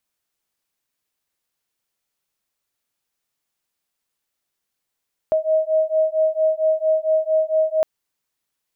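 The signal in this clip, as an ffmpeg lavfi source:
ffmpeg -f lavfi -i "aevalsrc='0.112*(sin(2*PI*629*t)+sin(2*PI*633.4*t))':duration=2.51:sample_rate=44100" out.wav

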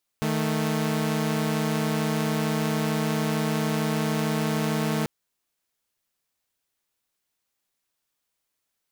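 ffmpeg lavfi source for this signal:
ffmpeg -f lavfi -i "aevalsrc='0.0668*((2*mod(155.56*t,1)-1)+(2*mod(220*t,1)-1))':duration=4.84:sample_rate=44100" out.wav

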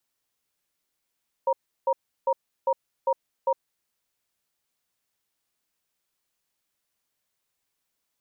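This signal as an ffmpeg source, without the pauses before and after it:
ffmpeg -f lavfi -i "aevalsrc='0.0794*(sin(2*PI*537*t)+sin(2*PI*943*t))*clip(min(mod(t,0.4),0.06-mod(t,0.4))/0.005,0,1)':duration=2.24:sample_rate=44100" out.wav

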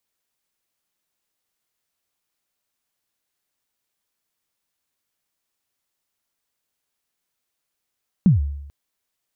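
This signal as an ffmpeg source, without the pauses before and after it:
ffmpeg -f lavfi -i "aevalsrc='0.398*pow(10,-3*t/0.86)*sin(2*PI*(210*0.142/log(71/210)*(exp(log(71/210)*min(t,0.142)/0.142)-1)+71*max(t-0.142,0)))':duration=0.44:sample_rate=44100" out.wav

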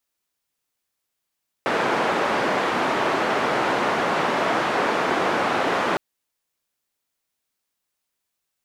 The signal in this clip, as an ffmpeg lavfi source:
ffmpeg -f lavfi -i "anoisesrc=color=white:duration=4.31:sample_rate=44100:seed=1,highpass=frequency=240,lowpass=frequency=1200,volume=-4.1dB" out.wav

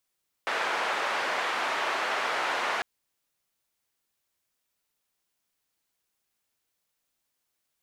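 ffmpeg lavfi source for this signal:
ffmpeg -f lavfi -i "anoisesrc=color=white:duration=2.35:sample_rate=44100:seed=1,highpass=frequency=610,lowpass=frequency=1600,volume=-11.3dB" out.wav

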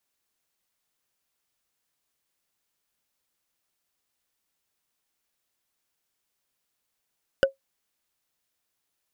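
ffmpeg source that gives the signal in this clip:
ffmpeg -f lavfi -i "aevalsrc='0.282*pow(10,-3*t/0.13)*sin(2*PI*542*t)+0.168*pow(10,-3*t/0.038)*sin(2*PI*1494.3*t)+0.1*pow(10,-3*t/0.017)*sin(2*PI*2929*t)+0.0596*pow(10,-3*t/0.009)*sin(2*PI*4841.7*t)+0.0355*pow(10,-3*t/0.006)*sin(2*PI*7230.3*t)':duration=0.45:sample_rate=44100" out.wav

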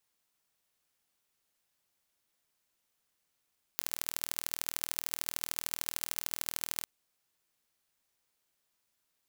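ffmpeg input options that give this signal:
ffmpeg -f lavfi -i "aevalsrc='0.596*eq(mod(n,1102),0)*(0.5+0.5*eq(mod(n,3306),0))':duration=3.06:sample_rate=44100" out.wav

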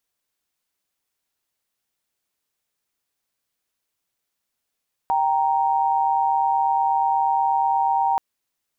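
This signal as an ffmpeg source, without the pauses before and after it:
ffmpeg -f lavfi -i "aevalsrc='0.1*(sin(2*PI*783.99*t)+sin(2*PI*932.33*t))':duration=3.08:sample_rate=44100" out.wav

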